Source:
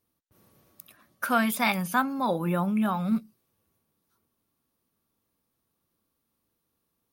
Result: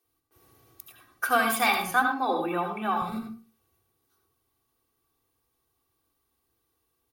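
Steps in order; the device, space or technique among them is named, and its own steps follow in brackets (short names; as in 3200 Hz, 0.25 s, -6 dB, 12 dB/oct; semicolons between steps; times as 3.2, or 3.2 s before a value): 1.91–2.97 three-band isolator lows -23 dB, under 150 Hz, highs -12 dB, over 4600 Hz; microphone above a desk (comb 2.6 ms, depth 75%; reverb RT60 0.35 s, pre-delay 71 ms, DRR 4 dB); bands offset in time highs, lows 50 ms, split 280 Hz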